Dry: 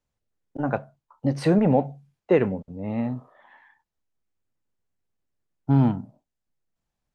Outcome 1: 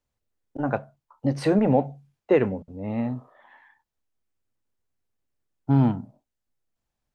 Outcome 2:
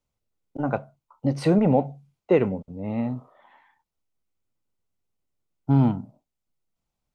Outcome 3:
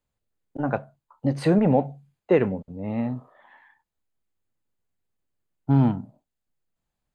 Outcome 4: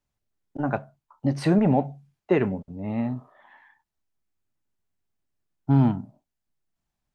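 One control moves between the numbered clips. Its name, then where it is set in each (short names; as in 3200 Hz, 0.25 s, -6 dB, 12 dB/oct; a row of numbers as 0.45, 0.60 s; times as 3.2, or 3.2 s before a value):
notch, frequency: 170, 1700, 5600, 500 Hz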